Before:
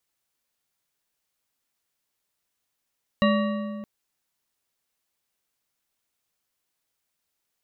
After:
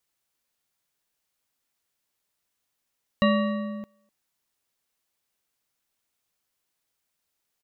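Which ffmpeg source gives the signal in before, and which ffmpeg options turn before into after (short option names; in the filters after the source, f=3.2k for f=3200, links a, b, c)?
-f lavfi -i "aevalsrc='0.126*pow(10,-3*t/2.28)*sin(2*PI*210*t)+0.0891*pow(10,-3*t/1.682)*sin(2*PI*579*t)+0.0631*pow(10,-3*t/1.374)*sin(2*PI*1134.8*t)+0.0447*pow(10,-3*t/1.182)*sin(2*PI*1875.9*t)+0.0316*pow(10,-3*t/1.048)*sin(2*PI*2801.4*t)+0.0224*pow(10,-3*t/0.948)*sin(2*PI*3914.4*t)':d=0.62:s=44100"
-filter_complex "[0:a]asplit=2[a][b];[b]adelay=250,highpass=300,lowpass=3.4k,asoftclip=type=hard:threshold=-17dB,volume=-27dB[c];[a][c]amix=inputs=2:normalize=0"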